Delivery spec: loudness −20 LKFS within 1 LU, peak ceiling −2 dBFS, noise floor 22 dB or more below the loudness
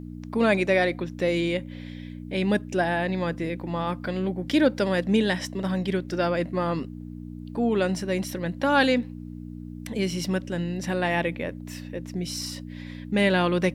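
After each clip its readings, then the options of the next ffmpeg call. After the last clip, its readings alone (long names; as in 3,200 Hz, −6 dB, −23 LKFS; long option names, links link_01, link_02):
mains hum 60 Hz; hum harmonics up to 300 Hz; level of the hum −36 dBFS; integrated loudness −26.0 LKFS; sample peak −7.0 dBFS; target loudness −20.0 LKFS
→ -af "bandreject=frequency=60:width_type=h:width=4,bandreject=frequency=120:width_type=h:width=4,bandreject=frequency=180:width_type=h:width=4,bandreject=frequency=240:width_type=h:width=4,bandreject=frequency=300:width_type=h:width=4"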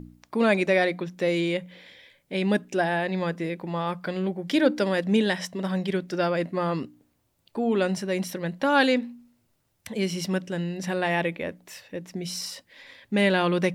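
mains hum none found; integrated loudness −26.0 LKFS; sample peak −7.0 dBFS; target loudness −20.0 LKFS
→ -af "volume=6dB,alimiter=limit=-2dB:level=0:latency=1"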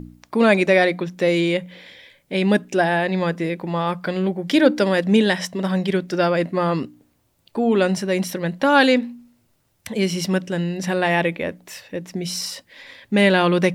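integrated loudness −20.0 LKFS; sample peak −2.0 dBFS; background noise floor −64 dBFS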